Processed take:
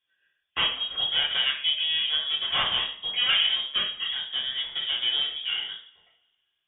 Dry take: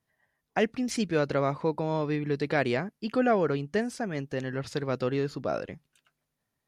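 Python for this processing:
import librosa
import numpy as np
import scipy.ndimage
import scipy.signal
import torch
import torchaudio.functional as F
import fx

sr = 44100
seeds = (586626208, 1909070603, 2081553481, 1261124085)

y = fx.self_delay(x, sr, depth_ms=0.31)
y = fx.freq_invert(y, sr, carrier_hz=3500)
y = fx.rev_double_slope(y, sr, seeds[0], early_s=0.45, late_s=1.7, knee_db=-25, drr_db=-5.0)
y = y * librosa.db_to_amplitude(-4.5)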